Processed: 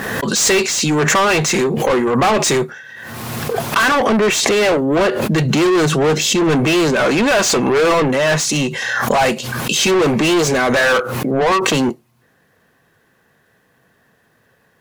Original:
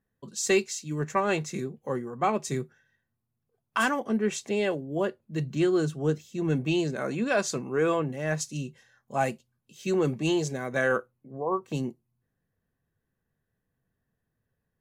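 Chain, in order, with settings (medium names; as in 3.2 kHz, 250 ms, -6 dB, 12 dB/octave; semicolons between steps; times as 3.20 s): overdrive pedal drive 33 dB, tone 4 kHz, clips at -11 dBFS; swell ahead of each attack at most 27 dB/s; trim +4 dB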